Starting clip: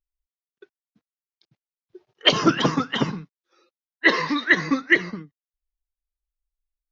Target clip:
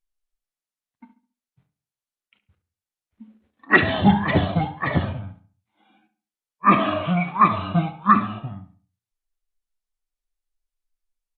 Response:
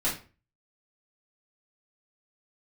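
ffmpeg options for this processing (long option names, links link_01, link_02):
-filter_complex "[0:a]asetrate=26813,aresample=44100,asplit=2[link_01][link_02];[link_02]adelay=69,lowpass=frequency=2600:poles=1,volume=-12.5dB,asplit=2[link_03][link_04];[link_04]adelay=69,lowpass=frequency=2600:poles=1,volume=0.35,asplit=2[link_05][link_06];[link_06]adelay=69,lowpass=frequency=2600:poles=1,volume=0.35,asplit=2[link_07][link_08];[link_08]adelay=69,lowpass=frequency=2600:poles=1,volume=0.35[link_09];[link_01][link_03][link_05][link_07][link_09]amix=inputs=5:normalize=0,asplit=2[link_10][link_11];[1:a]atrim=start_sample=2205[link_12];[link_11][link_12]afir=irnorm=-1:irlink=0,volume=-22dB[link_13];[link_10][link_13]amix=inputs=2:normalize=0"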